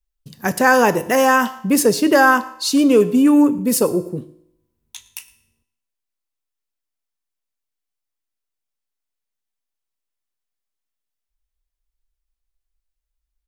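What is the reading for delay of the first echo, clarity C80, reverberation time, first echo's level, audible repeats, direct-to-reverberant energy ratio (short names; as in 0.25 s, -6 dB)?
0.113 s, 17.0 dB, 0.75 s, -22.0 dB, 1, 11.5 dB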